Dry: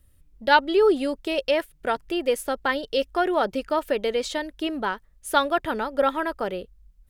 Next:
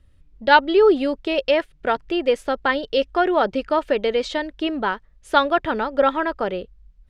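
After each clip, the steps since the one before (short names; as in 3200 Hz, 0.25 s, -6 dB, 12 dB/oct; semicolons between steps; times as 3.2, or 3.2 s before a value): LPF 4400 Hz 12 dB/oct; gain +4 dB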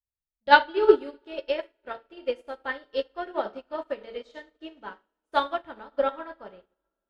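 two-slope reverb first 0.54 s, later 4.6 s, from -20 dB, DRR 1.5 dB; upward expander 2.5:1, over -36 dBFS; gain -2.5 dB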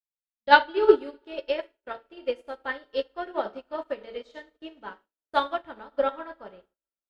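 gate with hold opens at -48 dBFS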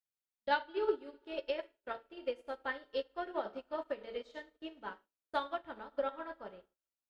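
compressor 2.5:1, threshold -30 dBFS, peak gain reduction 14 dB; gain -4 dB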